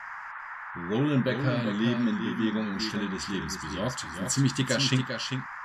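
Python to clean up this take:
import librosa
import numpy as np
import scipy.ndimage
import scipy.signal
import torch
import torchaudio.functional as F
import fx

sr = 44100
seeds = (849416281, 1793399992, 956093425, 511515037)

y = fx.noise_reduce(x, sr, print_start_s=0.0, print_end_s=0.5, reduce_db=30.0)
y = fx.fix_echo_inverse(y, sr, delay_ms=396, level_db=-7.0)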